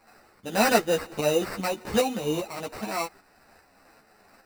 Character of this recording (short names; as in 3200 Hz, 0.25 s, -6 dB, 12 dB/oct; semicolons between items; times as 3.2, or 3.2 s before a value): a quantiser's noise floor 10-bit, dither triangular; tremolo saw up 2.5 Hz, depth 55%; aliases and images of a low sample rate 3300 Hz, jitter 0%; a shimmering, thickened sound